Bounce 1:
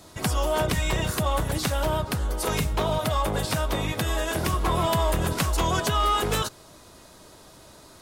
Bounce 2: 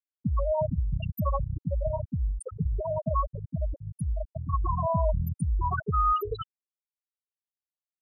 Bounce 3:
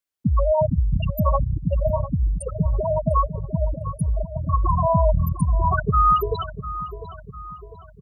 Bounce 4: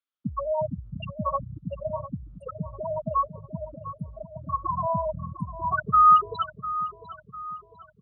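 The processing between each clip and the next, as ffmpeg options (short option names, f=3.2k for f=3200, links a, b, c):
-af "aemphasis=mode=production:type=50kf,afftfilt=real='re*gte(hypot(re,im),0.355)':imag='im*gte(hypot(re,im),0.355)':win_size=1024:overlap=0.75"
-filter_complex "[0:a]asplit=2[a][b];[b]adelay=700,lowpass=f=2.1k:p=1,volume=-12.5dB,asplit=2[c][d];[d]adelay=700,lowpass=f=2.1k:p=1,volume=0.49,asplit=2[e][f];[f]adelay=700,lowpass=f=2.1k:p=1,volume=0.49,asplit=2[g][h];[h]adelay=700,lowpass=f=2.1k:p=1,volume=0.49,asplit=2[i][j];[j]adelay=700,lowpass=f=2.1k:p=1,volume=0.49[k];[a][c][e][g][i][k]amix=inputs=6:normalize=0,volume=7.5dB"
-af "highpass=160,equalizer=f=160:t=q:w=4:g=-3,equalizer=f=400:t=q:w=4:g=-10,equalizer=f=770:t=q:w=4:g=-6,equalizer=f=1.3k:t=q:w=4:g=9,equalizer=f=1.9k:t=q:w=4:g=-5,equalizer=f=3.3k:t=q:w=4:g=5,lowpass=f=4.2k:w=0.5412,lowpass=f=4.2k:w=1.3066,volume=-5dB"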